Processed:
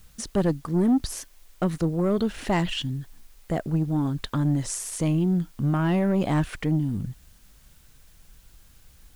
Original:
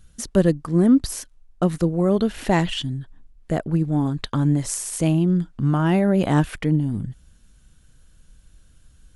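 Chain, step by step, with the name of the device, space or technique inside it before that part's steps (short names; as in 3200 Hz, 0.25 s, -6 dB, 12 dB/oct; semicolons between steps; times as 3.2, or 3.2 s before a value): compact cassette (soft clip -13.5 dBFS, distortion -14 dB; LPF 10000 Hz; wow and flutter; white noise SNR 34 dB); gain -2 dB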